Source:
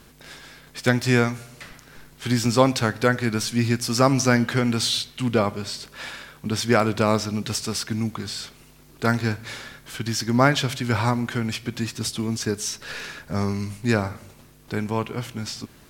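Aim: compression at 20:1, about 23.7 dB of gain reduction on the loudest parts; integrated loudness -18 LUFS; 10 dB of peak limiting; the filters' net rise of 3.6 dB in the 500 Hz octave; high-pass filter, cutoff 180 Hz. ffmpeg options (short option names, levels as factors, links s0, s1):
-af "highpass=180,equalizer=f=500:t=o:g=4.5,acompressor=threshold=0.0251:ratio=20,volume=11.2,alimiter=limit=0.473:level=0:latency=1"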